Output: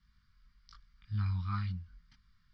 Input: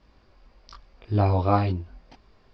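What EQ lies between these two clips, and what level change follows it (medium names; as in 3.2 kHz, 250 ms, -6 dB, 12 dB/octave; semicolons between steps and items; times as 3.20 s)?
Chebyshev band-stop 190–1300 Hz, order 3; band-stop 2.6 kHz, Q 5.6; -9.0 dB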